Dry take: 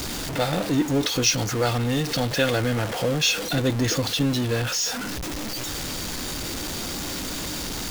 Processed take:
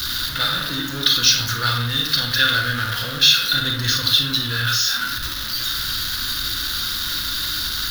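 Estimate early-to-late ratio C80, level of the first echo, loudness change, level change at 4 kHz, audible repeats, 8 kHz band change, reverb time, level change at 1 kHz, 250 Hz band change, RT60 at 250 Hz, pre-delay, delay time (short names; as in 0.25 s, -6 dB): 9.5 dB, none, +6.0 dB, +11.0 dB, none, +2.0 dB, 0.65 s, +3.5 dB, -7.0 dB, 0.80 s, 31 ms, none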